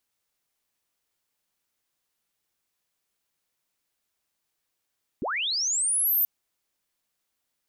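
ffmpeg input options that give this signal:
ffmpeg -f lavfi -i "aevalsrc='pow(10,(-26.5+7*t/1.03)/20)*sin(2*PI*(170*t+13830*t*t/(2*1.03)))':duration=1.03:sample_rate=44100" out.wav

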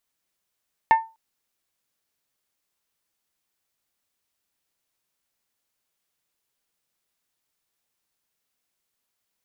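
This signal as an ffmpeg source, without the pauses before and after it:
ffmpeg -f lavfi -i "aevalsrc='0.355*pow(10,-3*t/0.28)*sin(2*PI*897*t)+0.126*pow(10,-3*t/0.172)*sin(2*PI*1794*t)+0.0447*pow(10,-3*t/0.152)*sin(2*PI*2152.8*t)+0.0158*pow(10,-3*t/0.13)*sin(2*PI*2691*t)+0.00562*pow(10,-3*t/0.106)*sin(2*PI*3588*t)':duration=0.25:sample_rate=44100" out.wav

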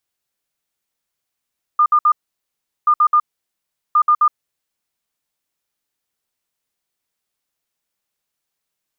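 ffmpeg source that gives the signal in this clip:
ffmpeg -f lavfi -i "aevalsrc='0.355*sin(2*PI*1210*t)*clip(min(mod(mod(t,1.08),0.13),0.07-mod(mod(t,1.08),0.13))/0.005,0,1)*lt(mod(t,1.08),0.39)':duration=3.24:sample_rate=44100" out.wav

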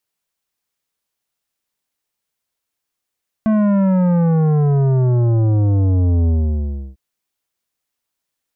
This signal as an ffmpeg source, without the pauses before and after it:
ffmpeg -f lavfi -i "aevalsrc='0.224*clip((3.5-t)/0.68,0,1)*tanh(3.76*sin(2*PI*220*3.5/log(65/220)*(exp(log(65/220)*t/3.5)-1)))/tanh(3.76)':duration=3.5:sample_rate=44100" out.wav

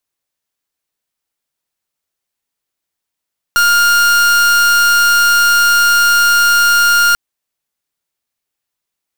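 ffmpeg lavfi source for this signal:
ffmpeg -f lavfi -i "aevalsrc='0.316*(2*lt(mod(1410*t,1),0.42)-1)':duration=3.59:sample_rate=44100" out.wav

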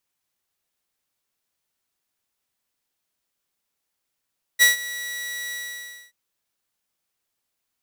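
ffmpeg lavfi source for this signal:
ffmpeg -f lavfi -i "aevalsrc='0.398*(2*mod(1940*t,1)-1)':duration=1.529:sample_rate=44100,afade=type=in:duration=0.032,afade=type=out:start_time=0.032:duration=0.138:silence=0.119,afade=type=out:start_time=0.93:duration=0.599" out.wav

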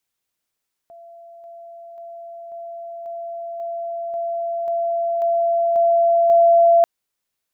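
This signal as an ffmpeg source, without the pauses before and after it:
ffmpeg -f lavfi -i "aevalsrc='pow(10,(-39.5+3*floor(t/0.54))/20)*sin(2*PI*679*t)':duration=5.94:sample_rate=44100" out.wav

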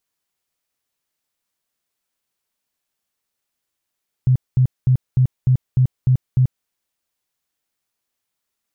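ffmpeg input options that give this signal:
ffmpeg -f lavfi -i "aevalsrc='0.299*sin(2*PI*128*mod(t,0.3))*lt(mod(t,0.3),11/128)':duration=2.4:sample_rate=44100" out.wav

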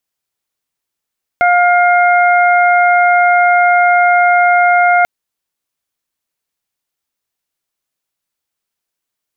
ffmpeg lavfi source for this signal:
ffmpeg -f lavfi -i "aevalsrc='0.376*sin(2*PI*708*t)+0.224*sin(2*PI*1416*t)+0.168*sin(2*PI*2124*t)':duration=3.64:sample_rate=44100" out.wav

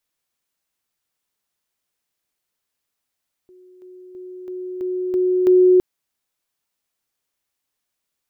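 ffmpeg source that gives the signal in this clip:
ffmpeg -f lavfi -i "aevalsrc='pow(10,(-45+6*floor(t/0.33))/20)*sin(2*PI*366*t)':duration=2.31:sample_rate=44100" out.wav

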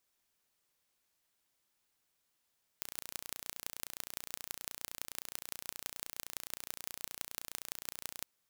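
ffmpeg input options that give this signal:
ffmpeg -f lavfi -i "aevalsrc='0.316*eq(mod(n,1490),0)*(0.5+0.5*eq(mod(n,7450),0))':duration=5.42:sample_rate=44100" out.wav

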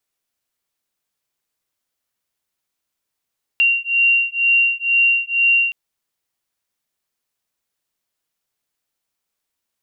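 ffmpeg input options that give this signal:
ffmpeg -f lavfi -i "aevalsrc='0.15*(sin(2*PI*2760*t)+sin(2*PI*2762.1*t))':duration=2.12:sample_rate=44100" out.wav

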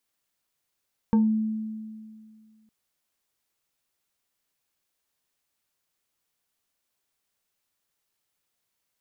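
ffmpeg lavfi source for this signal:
ffmpeg -f lavfi -i "aevalsrc='0.168*pow(10,-3*t/2.14)*sin(2*PI*218*t+0.55*pow(10,-3*t/0.25)*sin(2*PI*3.13*218*t))':duration=1.56:sample_rate=44100" out.wav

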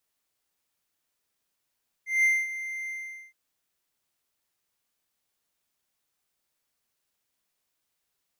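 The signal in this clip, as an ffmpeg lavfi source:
ffmpeg -f lavfi -i "aevalsrc='0.158*(1-4*abs(mod(2090*t+0.25,1)-0.5))':duration=1.269:sample_rate=44100,afade=type=in:duration=0.178,afade=type=out:start_time=0.178:duration=0.229:silence=0.2,afade=type=out:start_time=0.83:duration=0.439" out.wav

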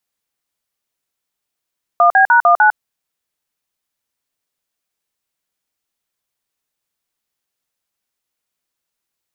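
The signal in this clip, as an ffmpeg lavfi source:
ffmpeg -f lavfi -i "aevalsrc='0.335*clip(min(mod(t,0.15),0.102-mod(t,0.15))/0.002,0,1)*(eq(floor(t/0.15),0)*(sin(2*PI*697*mod(t,0.15))+sin(2*PI*1209*mod(t,0.15)))+eq(floor(t/0.15),1)*(sin(2*PI*770*mod(t,0.15))+sin(2*PI*1633*mod(t,0.15)))+eq(floor(t/0.15),2)*(sin(2*PI*941*mod(t,0.15))+sin(2*PI*1477*mod(t,0.15)))+eq(floor(t/0.15),3)*(sin(2*PI*697*mod(t,0.15))+sin(2*PI*1209*mod(t,0.15)))+eq(floor(t/0.15),4)*(sin(2*PI*852*mod(t,0.15))+sin(2*PI*1477*mod(t,0.15))))':duration=0.75:sample_rate=44100" out.wav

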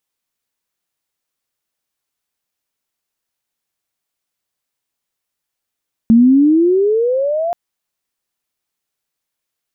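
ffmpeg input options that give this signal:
ffmpeg -f lavfi -i "aevalsrc='pow(10,(-4.5-11*t/1.43)/20)*sin(2*PI*222*1.43/(20*log(2)/12)*(exp(20*log(2)/12*t/1.43)-1))':duration=1.43:sample_rate=44100" out.wav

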